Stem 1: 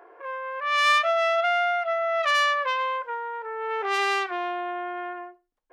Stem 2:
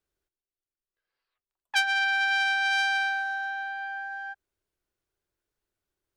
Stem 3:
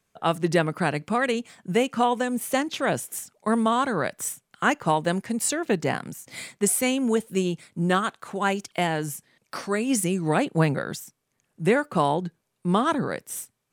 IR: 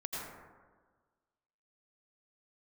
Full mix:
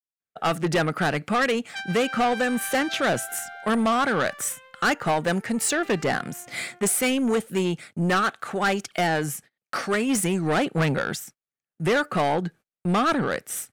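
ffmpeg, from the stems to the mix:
-filter_complex "[0:a]asoftclip=type=tanh:threshold=-16.5dB,adelay=1850,volume=-18dB[a];[1:a]volume=-9dB[b];[2:a]equalizer=f=1.3k:t=o:w=2.1:g=8,adelay=200,volume=2.5dB[c];[a][b][c]amix=inputs=3:normalize=0,agate=range=-30dB:threshold=-43dB:ratio=16:detection=peak,equalizer=f=1k:w=7.3:g=-14.5,asoftclip=type=tanh:threshold=-17.5dB"

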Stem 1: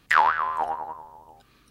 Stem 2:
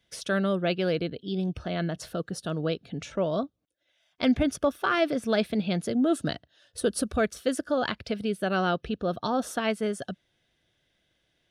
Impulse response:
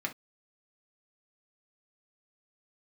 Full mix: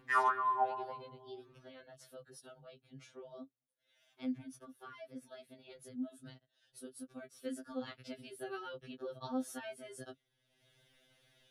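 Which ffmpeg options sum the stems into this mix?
-filter_complex "[0:a]bandpass=f=340:t=q:w=0.7:csg=0,volume=0dB[a];[1:a]equalizer=f=11k:t=o:w=0.32:g=10.5,acrossover=split=250[b][c];[c]acompressor=threshold=-32dB:ratio=5[d];[b][d]amix=inputs=2:normalize=0,volume=-7.5dB,afade=t=in:st=7.19:d=0.48:silence=0.398107[e];[a][e]amix=inputs=2:normalize=0,acompressor=mode=upward:threshold=-54dB:ratio=2.5,afftfilt=real='re*2.45*eq(mod(b,6),0)':imag='im*2.45*eq(mod(b,6),0)':win_size=2048:overlap=0.75"

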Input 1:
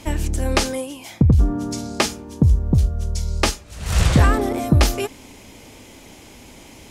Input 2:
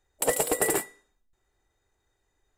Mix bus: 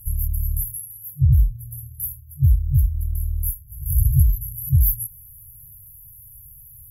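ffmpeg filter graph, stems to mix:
-filter_complex "[0:a]highshelf=f=5.5k:g=9,volume=-0.5dB[a];[1:a]acompressor=threshold=-38dB:ratio=3,volume=-8dB[b];[a][b]amix=inputs=2:normalize=0,highshelf=f=2k:g=8.5,afftfilt=real='re*(1-between(b*sr/4096,140,11000))':imag='im*(1-between(b*sr/4096,140,11000))':win_size=4096:overlap=0.75,equalizer=f=150:w=6.5:g=4"

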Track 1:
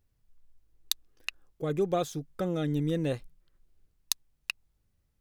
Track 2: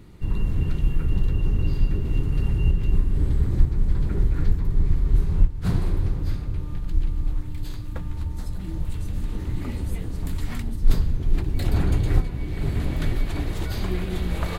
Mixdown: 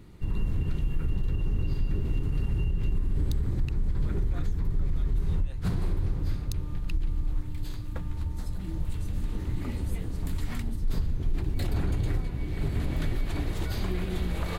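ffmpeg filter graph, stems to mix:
-filter_complex "[0:a]highpass=950,adelay=2400,volume=-12dB[a];[1:a]volume=-3dB[b];[a][b]amix=inputs=2:normalize=0,alimiter=limit=-19dB:level=0:latency=1:release=62"

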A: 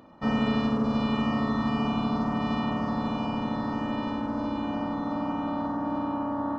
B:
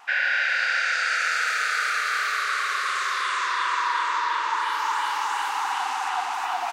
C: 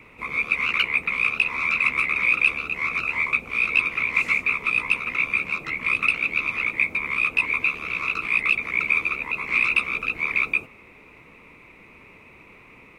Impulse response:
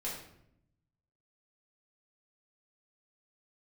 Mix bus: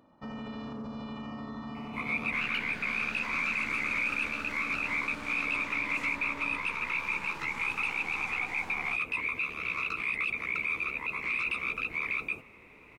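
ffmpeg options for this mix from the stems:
-filter_complex "[0:a]volume=-5.5dB[a];[1:a]aeval=exprs='if(lt(val(0),0),0.251*val(0),val(0))':c=same,adelay=2250,volume=-6dB[b];[2:a]alimiter=limit=-17.5dB:level=0:latency=1:release=11,adelay=1750,volume=-5.5dB[c];[a][b]amix=inputs=2:normalize=0,flanger=delay=6.9:depth=8.8:regen=-80:speed=0.37:shape=triangular,alimiter=level_in=8.5dB:limit=-24dB:level=0:latency=1:release=33,volume=-8.5dB,volume=0dB[d];[c][d]amix=inputs=2:normalize=0"

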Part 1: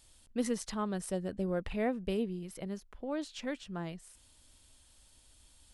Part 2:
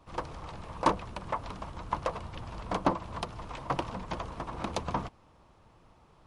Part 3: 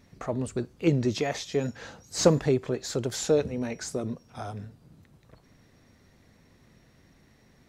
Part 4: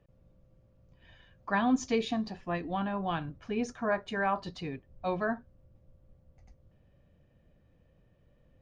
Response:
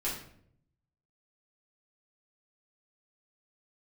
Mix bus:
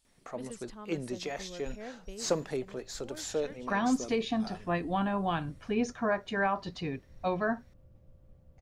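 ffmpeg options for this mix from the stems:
-filter_complex "[0:a]asubboost=boost=9.5:cutoff=56,volume=-11dB[a];[2:a]highpass=f=400:p=1,adelay=50,volume=-6.5dB[b];[3:a]alimiter=limit=-22dB:level=0:latency=1:release=366,adelay=2200,volume=2.5dB[c];[a][b][c]amix=inputs=3:normalize=0"

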